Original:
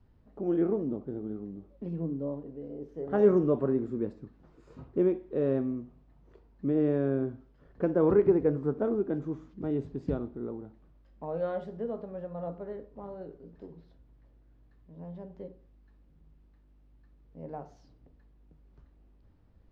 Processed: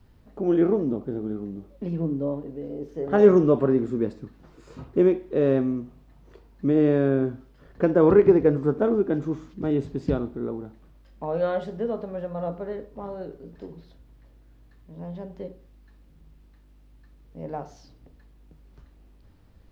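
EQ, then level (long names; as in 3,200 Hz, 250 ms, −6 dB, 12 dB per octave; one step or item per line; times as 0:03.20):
high-shelf EQ 2,000 Hz +9 dB
+6.5 dB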